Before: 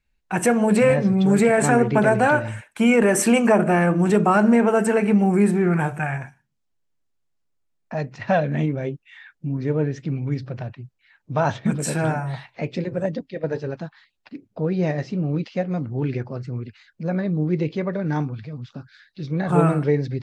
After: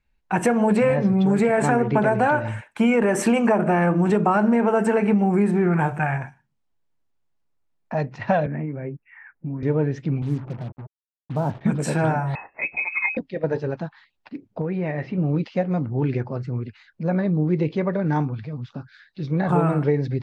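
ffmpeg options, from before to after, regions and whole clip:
-filter_complex "[0:a]asettb=1/sr,asplit=3[s0][s1][s2];[s0]atrim=end=8.464[s3];[s1]atrim=start=8.46:end=9.63,asetpts=PTS-STARTPTS,afade=t=in:d=0.004:c=qsin,afade=t=out:st=1.166:d=0.004:c=qsin,acrossover=split=150|430|1800[s4][s5][s6][s7];[s4]acompressor=threshold=0.01:ratio=3[s8];[s5]acompressor=threshold=0.02:ratio=3[s9];[s6]acompressor=threshold=0.00501:ratio=3[s10];[s7]acompressor=threshold=0.00447:ratio=3[s11];[s8][s9][s10][s11]amix=inputs=4:normalize=0,asuperstop=centerf=4800:order=8:qfactor=0.7[s12];[s2]atrim=start=9.626[s13];[s3][s12]acrossfade=d=0.004:c1=hsin:c2=qsin[s14];[s14][s13]acrossfade=d=0.004:c1=qsin:c2=hsin,asettb=1/sr,asplit=3[s15][s16][s17];[s15]atrim=end=10.224[s18];[s16]atrim=start=10.22:end=11.61,asetpts=PTS-STARTPTS,afade=t=in:d=0.004:c=qsin,afade=t=out:st=1.386:d=0.004:c=qsin,bandpass=f=210:t=q:w=0.84,acrusher=bits=6:mix=0:aa=0.5[s19];[s17]atrim=start=11.606[s20];[s18][s19]acrossfade=d=0.004:c1=hsin:c2=qsin[s21];[s21][s20]acrossfade=d=0.004:c1=qsin:c2=hsin,asettb=1/sr,asplit=3[s22][s23][s24];[s22]atrim=end=12.354[s25];[s23]atrim=start=12.35:end=13.17,asetpts=PTS-STARTPTS,afade=t=in:d=0.004:c=qsin,afade=t=out:st=0.816:d=0.004:c=qsin,bandreject=f=400:w=5.6,lowpass=f=2300:t=q:w=0.5098,lowpass=f=2300:t=q:w=0.6013,lowpass=f=2300:t=q:w=0.9,lowpass=f=2300:t=q:w=2.563,afreqshift=-2700[s26];[s24]atrim=start=13.166[s27];[s25][s26]acrossfade=d=0.004:c1=hsin:c2=qsin[s28];[s28][s27]acrossfade=d=0.004:c1=qsin:c2=hsin,asettb=1/sr,asplit=3[s29][s30][s31];[s29]atrim=end=14.614[s32];[s30]atrim=start=14.61:end=15.18,asetpts=PTS-STARTPTS,afade=t=in:d=0.004:c=qsin,afade=t=out:st=0.566:d=0.004:c=qsin,lowpass=3000,acompressor=threshold=0.0562:ratio=3:attack=3.2:release=140:knee=1:detection=peak,equalizer=f=2200:w=1.8:g=7.5[s33];[s31]atrim=start=15.176[s34];[s32][s33]acrossfade=d=0.004:c1=hsin:c2=qsin[s35];[s35][s34]acrossfade=d=0.004:c1=qsin:c2=hsin,lowpass=f=3100:p=1,equalizer=f=900:w=3:g=4,acompressor=threshold=0.141:ratio=6,volume=1.26"

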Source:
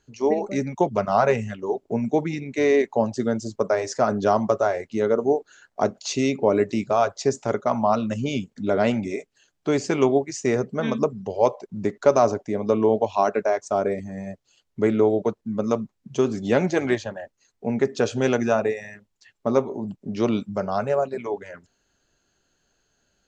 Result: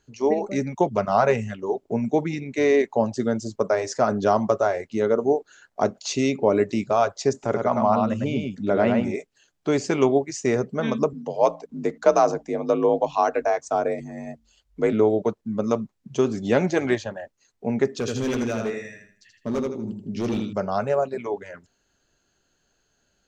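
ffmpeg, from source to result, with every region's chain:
-filter_complex "[0:a]asettb=1/sr,asplit=3[s0][s1][s2];[s0]atrim=end=7.334[s3];[s1]atrim=start=7.33:end=9.15,asetpts=PTS-STARTPTS,afade=t=in:d=0.004:c=qsin,afade=t=out:st=1.816:d=0.004:c=qsin,acrossover=split=2800[s4][s5];[s5]acompressor=threshold=0.00282:ratio=4:attack=1:release=60[s6];[s4][s6]amix=inputs=2:normalize=0,aecho=1:1:105:0.631,atrim=end_sample=80262[s7];[s2]atrim=start=9.146[s8];[s3][s7]acrossfade=d=0.004:c1=hsin:c2=qsin[s9];[s9][s8]acrossfade=d=0.004:c1=qsin:c2=hsin,asettb=1/sr,asplit=3[s10][s11][s12];[s10]atrim=end=11.134[s13];[s11]atrim=start=11.13:end=14.93,asetpts=PTS-STARTPTS,afade=t=in:d=0.004:c=qsin,afade=t=out:st=3.796:d=0.004:c=qsin,bandreject=f=60:t=h:w=6,bandreject=f=120:t=h:w=6,bandreject=f=180:t=h:w=6,bandreject=f=240:t=h:w=6,asubboost=boost=6.5:cutoff=55,afreqshift=46[s14];[s12]atrim=start=14.926[s15];[s13][s14]acrossfade=d=0.004:c1=hsin:c2=qsin[s16];[s16][s15]acrossfade=d=0.004:c1=qsin:c2=hsin,asettb=1/sr,asplit=3[s17][s18][s19];[s17]atrim=end=17.994[s20];[s18]atrim=start=17.99:end=20.53,asetpts=PTS-STARTPTS,afade=t=in:d=0.004:c=qsin,afade=t=out:st=2.536:d=0.004:c=qsin,equalizer=f=830:w=1:g=-13.5,aecho=1:1:80|160|240|320:0.631|0.208|0.0687|0.0227,atrim=end_sample=112014,asoftclip=type=hard:threshold=0.0944[s21];[s19]atrim=start=20.526[s22];[s20][s21]acrossfade=d=0.004:c1=hsin:c2=qsin[s23];[s23][s22]acrossfade=d=0.004:c1=qsin:c2=hsin"

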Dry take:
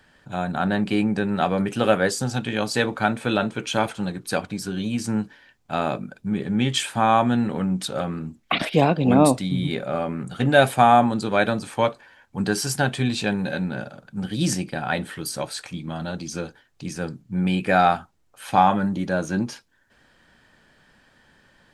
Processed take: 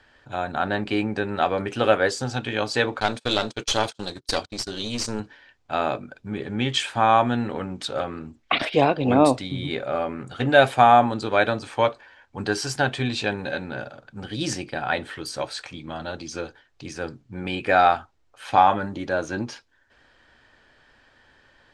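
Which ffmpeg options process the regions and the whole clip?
-filter_complex "[0:a]asettb=1/sr,asplit=3[s0][s1][s2];[s0]atrim=end=3.004[s3];[s1]atrim=start=3:end=5.2,asetpts=PTS-STARTPTS,afade=t=in:d=0.004:c=qsin,afade=t=out:st=2.196:d=0.004:c=qsin,agate=range=0.0355:threshold=0.0224:ratio=16:release=100:detection=peak,highshelf=f=3100:t=q:w=1.5:g=10.5,aeval=exprs='clip(val(0),-1,0.0531)':c=same[s4];[s2]atrim=start=5.196[s5];[s3][s4]acrossfade=d=0.004:c1=hsin:c2=qsin[s6];[s6][s5]acrossfade=d=0.004:c1=qsin:c2=hsin,lowpass=5800,equalizer=f=180:t=o:w=0.6:g=-14,volume=1.12"

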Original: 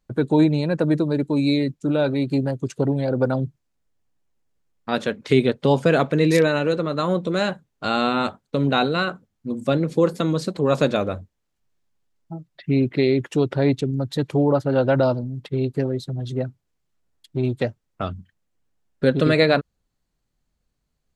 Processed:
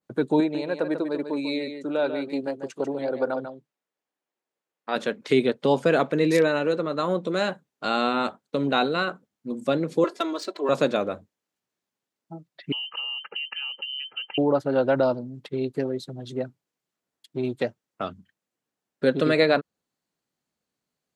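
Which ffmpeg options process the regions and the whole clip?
-filter_complex "[0:a]asettb=1/sr,asplit=3[s0][s1][s2];[s0]atrim=end=0.404[s3];[s1]atrim=start=0.4:end=4.96,asetpts=PTS-STARTPTS,afade=t=in:d=0.004:c=qsin,afade=t=out:st=4.556:d=0.004:c=qsin,bass=f=250:g=-13,treble=f=4000:g=-6,aecho=1:1:144:0.376,atrim=end_sample=201096[s4];[s2]atrim=start=4.956[s5];[s3][s4]acrossfade=d=0.004:c1=hsin:c2=qsin[s6];[s6][s5]acrossfade=d=0.004:c1=qsin:c2=hsin,asettb=1/sr,asplit=3[s7][s8][s9];[s7]atrim=end=10.044[s10];[s8]atrim=start=10.04:end=10.69,asetpts=PTS-STARTPTS,afade=t=in:d=0.004:c=qsin,afade=t=out:st=0.646:d=0.004:c=qsin,highpass=490,aecho=1:1:3:0.94,atrim=end_sample=28665,adynamicsmooth=sensitivity=4:basefreq=5400[s11];[s9]atrim=start=10.686[s12];[s10][s11]acrossfade=d=0.004:c1=hsin:c2=qsin[s13];[s13][s12]acrossfade=d=0.004:c1=qsin:c2=hsin,asettb=1/sr,asplit=3[s14][s15][s16];[s14]atrim=end=12.724[s17];[s15]atrim=start=12.72:end=14.38,asetpts=PTS-STARTPTS,afade=t=in:d=0.004:c=qsin,afade=t=out:st=1.656:d=0.004:c=qsin,aecho=1:1:2.6:0.68,atrim=end_sample=73206,acompressor=threshold=0.0501:ratio=12:attack=3.2:release=140:knee=1:detection=peak,lowpass=f=2700:t=q:w=0.5098,lowpass=f=2700:t=q:w=0.6013,lowpass=f=2700:t=q:w=0.9,lowpass=f=2700:t=q:w=2.563,afreqshift=-3200[s18];[s16]atrim=start=14.376[s19];[s17][s18]acrossfade=d=0.004:c1=hsin:c2=qsin[s20];[s20][s19]acrossfade=d=0.004:c1=qsin:c2=hsin,highpass=220,adynamicequalizer=threshold=0.0224:dfrequency=2100:dqfactor=0.7:tfrequency=2100:tqfactor=0.7:attack=5:release=100:ratio=0.375:range=1.5:mode=cutabove:tftype=highshelf,volume=0.794"

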